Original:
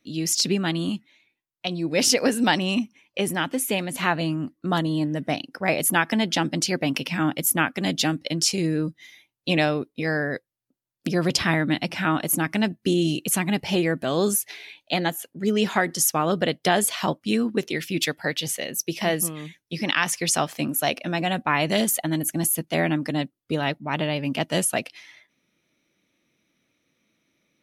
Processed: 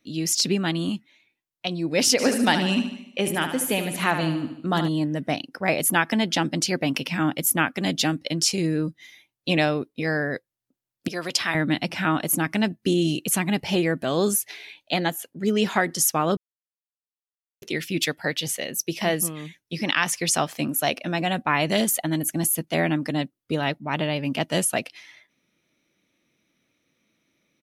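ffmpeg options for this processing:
-filter_complex "[0:a]asplit=3[a][b][c];[a]afade=t=out:st=2.18:d=0.02[d];[b]aecho=1:1:74|148|222|296|370|444:0.355|0.185|0.0959|0.0499|0.0259|0.0135,afade=t=in:st=2.18:d=0.02,afade=t=out:st=4.87:d=0.02[e];[c]afade=t=in:st=4.87:d=0.02[f];[d][e][f]amix=inputs=3:normalize=0,asettb=1/sr,asplit=3[g][h][i];[g]atrim=end=11.084[j];[h]atrim=start=11.08:end=11.55,asetpts=PTS-STARTPTS,afade=t=in:d=0.004:c=qsin,afade=t=out:st=0.466:d=0.004:c=qsin,highpass=f=920:p=1[k];[i]atrim=start=11.546[l];[j][k]acrossfade=d=0.004:c1=hsin:c2=qsin[m];[m][l]acrossfade=d=0.004:c1=qsin:c2=hsin,asplit=3[n][o][p];[n]atrim=end=16.37,asetpts=PTS-STARTPTS,afade=t=out:st=16.366:d=0.004:c=hsin[q];[o]atrim=start=16.37:end=17.62,asetpts=PTS-STARTPTS,volume=0[r];[p]atrim=start=17.62,asetpts=PTS-STARTPTS,afade=t=in:d=0.004:c=hsin[s];[q][r][s]concat=n=3:v=0:a=1"

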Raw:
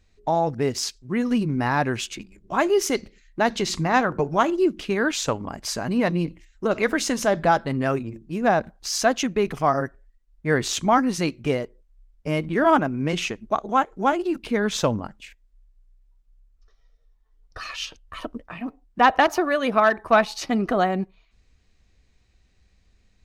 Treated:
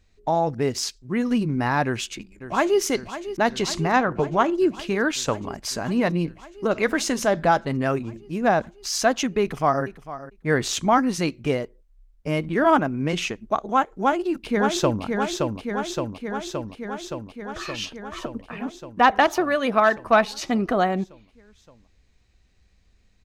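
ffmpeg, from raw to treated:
-filter_complex "[0:a]asplit=2[a][b];[b]afade=t=in:st=1.85:d=0.01,afade=t=out:st=2.81:d=0.01,aecho=0:1:550|1100|1650|2200|2750|3300|3850|4400|4950|5500|6050|6600:0.237137|0.18971|0.151768|0.121414|0.0971315|0.0777052|0.0621641|0.0497313|0.039785|0.031828|0.0254624|0.0203699[c];[a][c]amix=inputs=2:normalize=0,asettb=1/sr,asplit=3[d][e][f];[d]atrim=end=3.964[g];[e]atrim=start=3.96:end=4.55,asetpts=PTS-STARTPTS,afade=t=in:d=0.004:c=qsin,afade=t=out:st=0.586:d=0.004:c=qsin,aemphasis=mode=reproduction:type=cd[h];[f]atrim=start=4.546[i];[g][h]acrossfade=d=0.004:c1=hsin:c2=qsin[j];[j][i]acrossfade=d=0.004:c1=qsin:c2=hsin,asplit=2[k][l];[l]afade=t=in:st=9.41:d=0.01,afade=t=out:st=9.84:d=0.01,aecho=0:1:450|900:0.188365|0.0188365[m];[k][m]amix=inputs=2:normalize=0,asplit=2[n][o];[o]afade=t=in:st=13.92:d=0.01,afade=t=out:st=15.03:d=0.01,aecho=0:1:570|1140|1710|2280|2850|3420|3990|4560|5130|5700|6270|6840:0.630957|0.473218|0.354914|0.266185|0.199639|0.149729|0.112297|0.0842226|0.063167|0.0473752|0.0355314|0.0266486[p];[n][p]amix=inputs=2:normalize=0"

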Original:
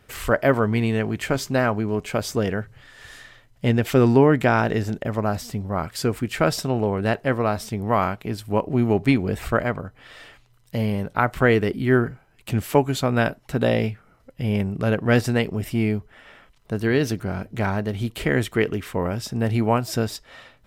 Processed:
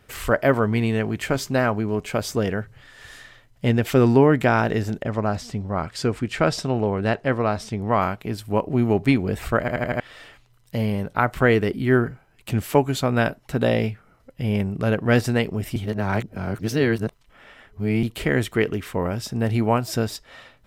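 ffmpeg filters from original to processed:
-filter_complex "[0:a]asettb=1/sr,asplit=3[a][b][c];[a]atrim=end=5.044[d];[b]atrim=start=5.04:end=8.01,asetpts=PTS-STARTPTS,afade=t=in:d=0.004:c=qsin,afade=t=out:st=2.966:d=0.004:c=qsin,lowpass=7.5k[e];[c]atrim=start=8.006[f];[d][e]acrossfade=d=0.004:c1=hsin:c2=qsin[g];[g][f]acrossfade=d=0.004:c1=qsin:c2=hsin,asplit=8[h][i][j][k][l][m][n][o];[h]atrim=end=9.682[p];[i]atrim=start=9.598:end=9.682[q];[j]atrim=start=9.598:end=9.682[r];[k]atrim=start=9.598:end=9.682[s];[l]atrim=start=9.598:end=9.682[t];[m]atrim=start=9.998:end=15.762[u];[n]atrim=start=15.758:end=18.032,asetpts=PTS-STARTPTS,areverse[v];[o]atrim=start=18.028[w];[p][q]acrossfade=d=0.004:c1=hsin:c2=hsin[x];[x][r]acrossfade=d=0.004:c1=hsin:c2=hsin[y];[y][s]acrossfade=d=0.004:c1=hsin:c2=hsin[z];[z][t]acrossfade=d=0.004:c1=hsin:c2=hsin[aa];[aa][u]acrossfade=d=0.004:c1=hsin:c2=hsin[ab];[ab][v]acrossfade=d=0.004:c1=hsin:c2=hsin[ac];[ac][w]acrossfade=d=0.004:c1=hsin:c2=hsin"

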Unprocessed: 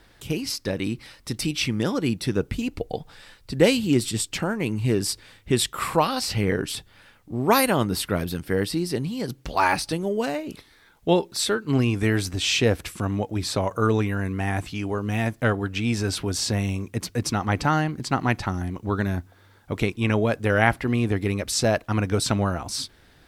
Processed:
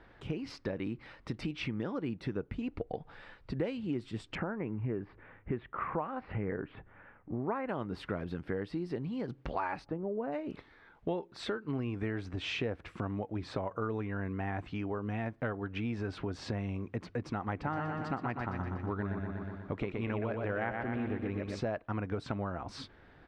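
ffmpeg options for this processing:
-filter_complex "[0:a]asettb=1/sr,asplit=3[a][b][c];[a]atrim=end=4.354[d];[b]atrim=start=4.35:end=7.69,asetpts=PTS-STARTPTS,afade=t=in:d=0.004:c=qsin,afade=t=out:st=3.336:d=0.004:c=qsin,lowpass=f=2.2k:w=0.5412,lowpass=f=2.2k:w=1.3066[e];[c]atrim=start=7.686[f];[d][e]acrossfade=d=0.004:c1=hsin:c2=qsin[g];[g][f]acrossfade=d=0.004:c1=qsin:c2=hsin,asplit=3[h][i][j];[h]afade=t=out:st=9.84:d=0.02[k];[i]lowpass=1.2k,afade=t=in:st=9.84:d=0.02,afade=t=out:st=10.31:d=0.02[l];[j]afade=t=in:st=10.31:d=0.02[m];[k][l][m]amix=inputs=3:normalize=0,asplit=3[n][o][p];[n]afade=t=out:st=17.65:d=0.02[q];[o]aecho=1:1:121|242|363|484|605|726|847:0.562|0.304|0.164|0.0885|0.0478|0.0258|0.0139,afade=t=in:st=17.65:d=0.02,afade=t=out:st=21.59:d=0.02[r];[p]afade=t=in:st=21.59:d=0.02[s];[q][r][s]amix=inputs=3:normalize=0,lowpass=1.8k,lowshelf=f=210:g=-4.5,acompressor=threshold=-34dB:ratio=4"

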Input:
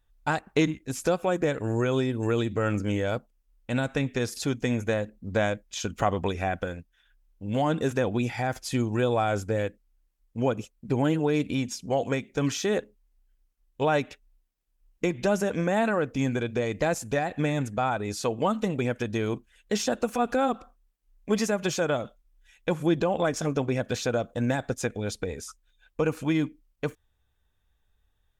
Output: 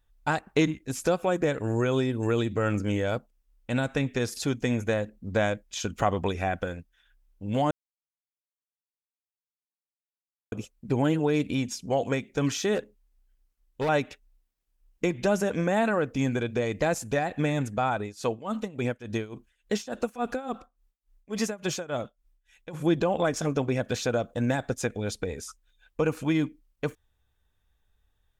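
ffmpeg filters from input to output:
-filter_complex "[0:a]asettb=1/sr,asplit=3[a][b][c];[a]atrim=end=12.754[d];[b]atrim=start=12.75:end=13.89,asetpts=PTS-STARTPTS,afade=t=in:d=0.004:c=qsin,afade=t=out:st=1.136:d=0.004:c=qsin,asoftclip=type=hard:threshold=-24dB[e];[c]atrim=start=13.886[f];[d][e]acrossfade=d=0.004:c1=hsin:c2=qsin[g];[g][f]acrossfade=d=0.004:c1=qsin:c2=hsin,asplit=3[h][i][j];[h]afade=t=out:st=17.96:d=0.02[k];[i]tremolo=f=3.5:d=0.87,afade=t=in:st=17.96:d=0.02,afade=t=out:st=22.73:d=0.02[l];[j]afade=t=in:st=22.73:d=0.02[m];[k][l][m]amix=inputs=3:normalize=0,asplit=3[n][o][p];[n]atrim=end=7.71,asetpts=PTS-STARTPTS,afade=t=out:st=7.706:d=0.004:c=hsin[q];[o]atrim=start=7.71:end=10.52,asetpts=PTS-STARTPTS,volume=0[r];[p]atrim=start=10.52,asetpts=PTS-STARTPTS,afade=t=in:d=0.004:c=hsin[s];[q][r][s]concat=n=3:v=0:a=1"

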